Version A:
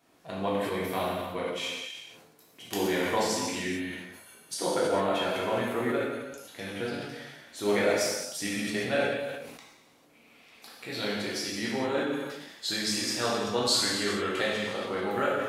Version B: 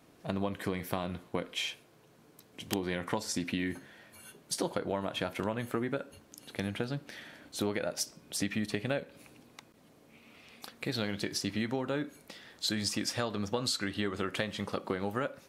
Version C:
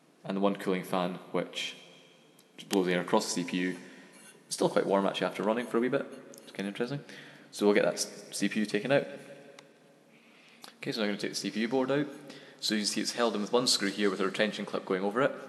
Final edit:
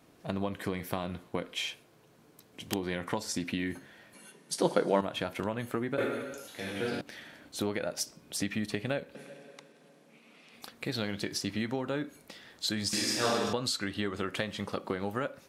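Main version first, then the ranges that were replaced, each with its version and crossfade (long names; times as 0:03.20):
B
0:04.14–0:05.01: punch in from C
0:05.98–0:07.01: punch in from A
0:09.15–0:10.54: punch in from C
0:12.93–0:13.53: punch in from A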